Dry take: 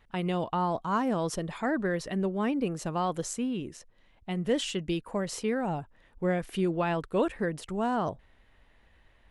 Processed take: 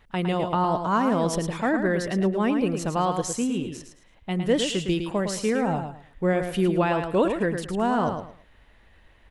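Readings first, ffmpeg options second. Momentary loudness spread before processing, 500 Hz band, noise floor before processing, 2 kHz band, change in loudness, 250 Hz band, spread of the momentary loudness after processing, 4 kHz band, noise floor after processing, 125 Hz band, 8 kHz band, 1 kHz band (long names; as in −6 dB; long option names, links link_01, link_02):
6 LU, +6.0 dB, −63 dBFS, +6.0 dB, +6.0 dB, +6.0 dB, 6 LU, +6.0 dB, −56 dBFS, +5.5 dB, +6.0 dB, +6.0 dB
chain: -af "aecho=1:1:109|218|327:0.447|0.112|0.0279,volume=5dB"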